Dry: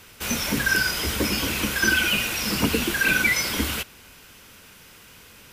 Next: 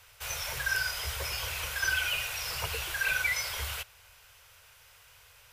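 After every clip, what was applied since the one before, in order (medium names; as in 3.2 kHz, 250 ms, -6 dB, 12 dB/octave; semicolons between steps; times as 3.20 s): Chebyshev band-stop 100–610 Hz, order 2; trim -7.5 dB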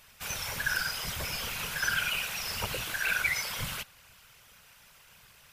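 whisper effect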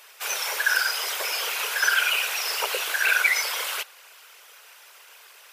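elliptic high-pass 400 Hz, stop band 70 dB; trim +8.5 dB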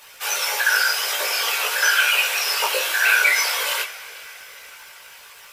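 two-slope reverb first 0.23 s, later 4.8 s, from -22 dB, DRR 4 dB; crackle 86 per s -39 dBFS; chorus voices 6, 0.56 Hz, delay 18 ms, depth 1.4 ms; trim +6.5 dB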